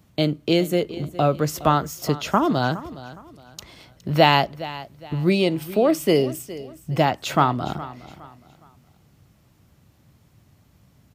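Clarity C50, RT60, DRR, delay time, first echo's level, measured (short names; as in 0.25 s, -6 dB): none, none, none, 0.414 s, -16.5 dB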